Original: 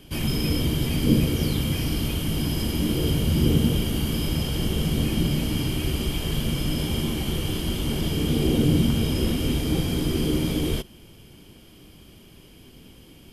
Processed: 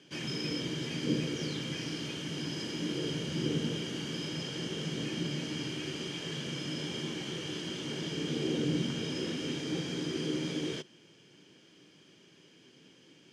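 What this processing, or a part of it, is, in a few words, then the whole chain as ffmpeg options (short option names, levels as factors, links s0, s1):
television speaker: -af "highpass=f=160:w=0.5412,highpass=f=160:w=1.3066,equalizer=f=220:t=q:w=4:g=-8,equalizer=f=720:t=q:w=4:g=-6,equalizer=f=1100:t=q:w=4:g=-3,equalizer=f=1700:t=q:w=4:g=6,equalizer=f=6200:t=q:w=4:g=6,lowpass=f=7100:w=0.5412,lowpass=f=7100:w=1.3066,volume=0.447"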